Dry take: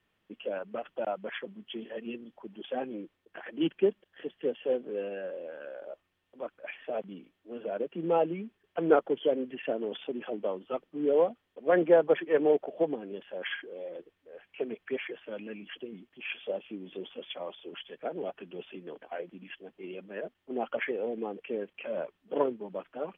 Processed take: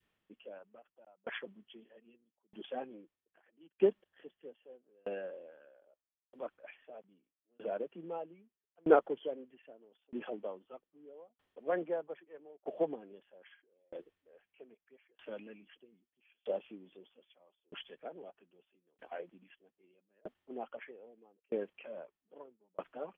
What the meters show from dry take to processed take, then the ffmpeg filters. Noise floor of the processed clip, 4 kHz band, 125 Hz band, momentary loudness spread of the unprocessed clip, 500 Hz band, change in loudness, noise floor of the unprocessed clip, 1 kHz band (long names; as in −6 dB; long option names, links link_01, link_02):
below −85 dBFS, can't be measured, −11.0 dB, 18 LU, −8.5 dB, −6.5 dB, −77 dBFS, −7.0 dB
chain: -af "adynamicequalizer=threshold=0.0126:dfrequency=820:dqfactor=0.77:tfrequency=820:tqfactor=0.77:attack=5:release=100:ratio=0.375:range=2:mode=boostabove:tftype=bell,aeval=exprs='val(0)*pow(10,-36*if(lt(mod(0.79*n/s,1),2*abs(0.79)/1000),1-mod(0.79*n/s,1)/(2*abs(0.79)/1000),(mod(0.79*n/s,1)-2*abs(0.79)/1000)/(1-2*abs(0.79)/1000))/20)':channel_layout=same,volume=-2dB"